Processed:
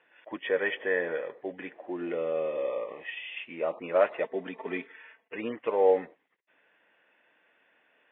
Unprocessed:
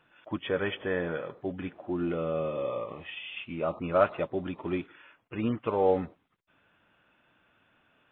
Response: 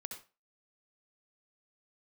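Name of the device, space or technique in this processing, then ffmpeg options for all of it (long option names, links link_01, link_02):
phone earpiece: -filter_complex "[0:a]highpass=370,equalizer=frequency=480:width_type=q:width=4:gain=5,equalizer=frequency=1300:width_type=q:width=4:gain=-8,equalizer=frequency=1900:width_type=q:width=4:gain=10,lowpass=frequency=3300:width=0.5412,lowpass=frequency=3300:width=1.3066,asettb=1/sr,asplit=3[link_01][link_02][link_03];[link_01]atrim=end=4.234[link_04];[link_02]atrim=start=4.23:end=5.36,asetpts=PTS-STARTPTS,afade=type=in:duration=0.004:curve=qsin,afade=type=out:start_time=1.126:duration=0.004:curve=qsin,aecho=1:1:4.5:0.73,atrim=end_sample=49833[link_05];[link_03]atrim=start=5.356[link_06];[link_04][link_05]acrossfade=duration=0.004:curve1=hsin:curve2=qsin[link_07];[link_07][link_06]acrossfade=duration=0.004:curve1=qsin:curve2=hsin"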